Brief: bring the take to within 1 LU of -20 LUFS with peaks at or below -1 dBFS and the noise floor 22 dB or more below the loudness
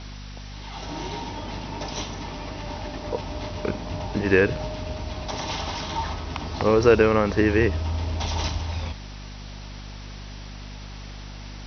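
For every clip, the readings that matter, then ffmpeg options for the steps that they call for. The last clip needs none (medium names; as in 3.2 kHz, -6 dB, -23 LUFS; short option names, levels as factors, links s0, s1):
hum 50 Hz; highest harmonic 250 Hz; hum level -36 dBFS; noise floor -38 dBFS; noise floor target -48 dBFS; loudness -25.5 LUFS; peak level -4.5 dBFS; loudness target -20.0 LUFS
-> -af "bandreject=f=50:t=h:w=6,bandreject=f=100:t=h:w=6,bandreject=f=150:t=h:w=6,bandreject=f=200:t=h:w=6,bandreject=f=250:t=h:w=6"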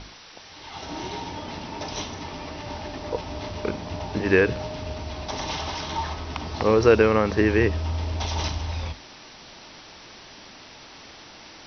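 hum not found; noise floor -46 dBFS; noise floor target -48 dBFS
-> -af "afftdn=nr=6:nf=-46"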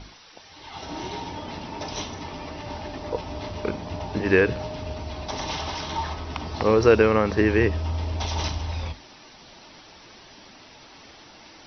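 noise floor -49 dBFS; loudness -25.5 LUFS; peak level -5.0 dBFS; loudness target -20.0 LUFS
-> -af "volume=1.88,alimiter=limit=0.891:level=0:latency=1"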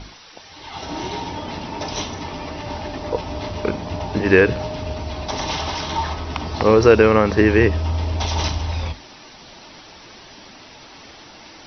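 loudness -20.5 LUFS; peak level -1.0 dBFS; noise floor -43 dBFS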